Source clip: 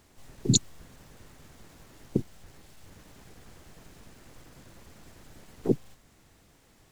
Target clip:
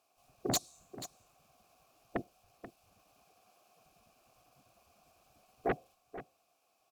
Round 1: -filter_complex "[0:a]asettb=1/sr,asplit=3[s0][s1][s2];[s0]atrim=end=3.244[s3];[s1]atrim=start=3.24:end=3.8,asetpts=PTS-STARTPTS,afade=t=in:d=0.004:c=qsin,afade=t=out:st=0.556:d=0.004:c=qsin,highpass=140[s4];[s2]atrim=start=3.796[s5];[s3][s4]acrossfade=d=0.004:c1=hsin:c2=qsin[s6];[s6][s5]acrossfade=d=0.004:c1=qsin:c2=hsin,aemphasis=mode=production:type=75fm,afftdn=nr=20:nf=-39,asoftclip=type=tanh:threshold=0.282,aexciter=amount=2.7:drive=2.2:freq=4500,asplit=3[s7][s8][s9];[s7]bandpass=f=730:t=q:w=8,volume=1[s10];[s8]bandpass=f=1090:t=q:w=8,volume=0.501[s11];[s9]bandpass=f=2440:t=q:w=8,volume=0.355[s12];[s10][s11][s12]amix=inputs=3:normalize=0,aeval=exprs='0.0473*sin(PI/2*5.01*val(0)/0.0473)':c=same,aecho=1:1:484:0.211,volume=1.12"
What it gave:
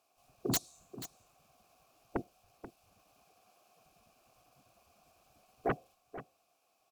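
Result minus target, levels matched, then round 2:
saturation: distortion -4 dB
-filter_complex "[0:a]asettb=1/sr,asplit=3[s0][s1][s2];[s0]atrim=end=3.244[s3];[s1]atrim=start=3.24:end=3.8,asetpts=PTS-STARTPTS,afade=t=in:d=0.004:c=qsin,afade=t=out:st=0.556:d=0.004:c=qsin,highpass=140[s4];[s2]atrim=start=3.796[s5];[s3][s4]acrossfade=d=0.004:c1=hsin:c2=qsin[s6];[s6][s5]acrossfade=d=0.004:c1=qsin:c2=hsin,aemphasis=mode=production:type=75fm,afftdn=nr=20:nf=-39,asoftclip=type=tanh:threshold=0.119,aexciter=amount=2.7:drive=2.2:freq=4500,asplit=3[s7][s8][s9];[s7]bandpass=f=730:t=q:w=8,volume=1[s10];[s8]bandpass=f=1090:t=q:w=8,volume=0.501[s11];[s9]bandpass=f=2440:t=q:w=8,volume=0.355[s12];[s10][s11][s12]amix=inputs=3:normalize=0,aeval=exprs='0.0473*sin(PI/2*5.01*val(0)/0.0473)':c=same,aecho=1:1:484:0.211,volume=1.12"

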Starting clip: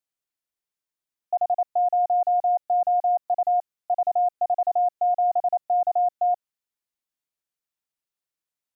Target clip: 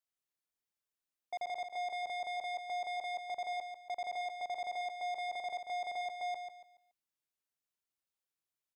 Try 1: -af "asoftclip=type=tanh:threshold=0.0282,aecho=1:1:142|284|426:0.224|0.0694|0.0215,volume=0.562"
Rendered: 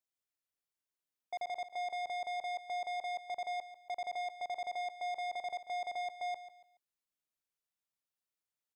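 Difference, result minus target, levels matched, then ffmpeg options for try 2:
echo-to-direct -6 dB
-af "asoftclip=type=tanh:threshold=0.0282,aecho=1:1:142|284|426|568:0.447|0.138|0.0429|0.0133,volume=0.562"

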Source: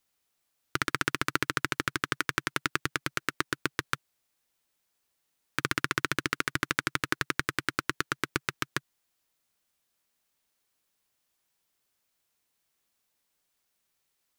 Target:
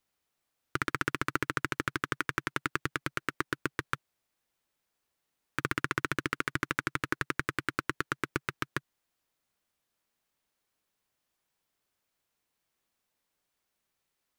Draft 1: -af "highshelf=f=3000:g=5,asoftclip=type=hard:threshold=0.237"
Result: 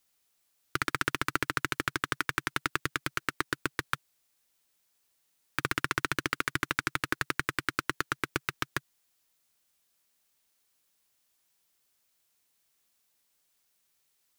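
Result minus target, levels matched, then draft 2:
4 kHz band +3.5 dB
-af "highshelf=f=3000:g=-6.5,asoftclip=type=hard:threshold=0.237"

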